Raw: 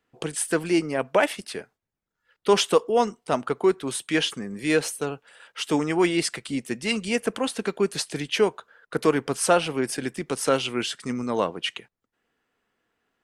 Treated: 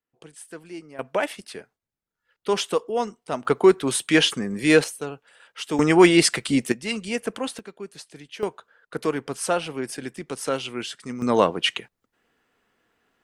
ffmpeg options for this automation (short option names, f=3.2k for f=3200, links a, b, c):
-af "asetnsamples=n=441:p=0,asendcmd='0.99 volume volume -4dB;3.45 volume volume 5.5dB;4.84 volume volume -3dB;5.79 volume volume 7.5dB;6.72 volume volume -2.5dB;7.59 volume volume -13.5dB;8.43 volume volume -4dB;11.22 volume volume 6dB',volume=-16dB"